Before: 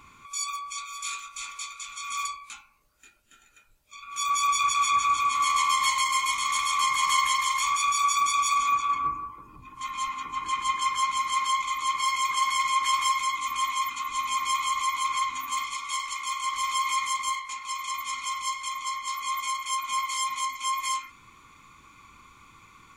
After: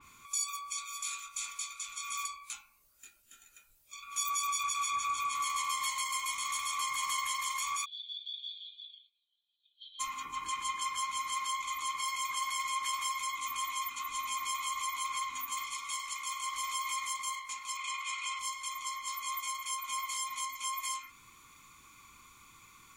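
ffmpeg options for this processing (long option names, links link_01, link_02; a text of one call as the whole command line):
ffmpeg -i in.wav -filter_complex "[0:a]asplit=3[link_01][link_02][link_03];[link_01]afade=type=out:start_time=7.84:duration=0.02[link_04];[link_02]asuperpass=centerf=3600:order=8:qfactor=3.3,afade=type=in:start_time=7.84:duration=0.02,afade=type=out:start_time=9.99:duration=0.02[link_05];[link_03]afade=type=in:start_time=9.99:duration=0.02[link_06];[link_04][link_05][link_06]amix=inputs=3:normalize=0,asettb=1/sr,asplit=3[link_07][link_08][link_09];[link_07]atrim=end=17.774[link_10];[link_08]atrim=start=17.77:end=18.39,asetpts=PTS-STARTPTS,afade=type=in:duration=0.004:curve=qsin,afade=type=out:start_time=0.616:duration=0.004:curve=qsin,highpass=frequency=490:width=0.5412,highpass=frequency=490:width=1.3066,equalizer=frequency=700:width_type=q:width=4:gain=-4,equalizer=frequency=1500:width_type=q:width=4:gain=4,equalizer=frequency=2600:width_type=q:width=4:gain=10,equalizer=frequency=5800:width_type=q:width=4:gain=-5,lowpass=frequency=8800:width=0.5412,lowpass=frequency=8800:width=1.3066[link_11];[link_09]atrim=start=18.386[link_12];[link_10][link_11]acrossfade=duration=0.004:curve1=hsin:curve2=qsin[link_13];[link_13][link_12]acrossfade=duration=0.004:curve1=qsin:curve2=hsin,aemphasis=mode=production:type=75kf,acompressor=threshold=-25dB:ratio=2,adynamicequalizer=threshold=0.01:dfrequency=3500:dqfactor=0.7:tfrequency=3500:tqfactor=0.7:attack=5:release=100:ratio=0.375:range=2.5:mode=cutabove:tftype=highshelf,volume=-7.5dB" out.wav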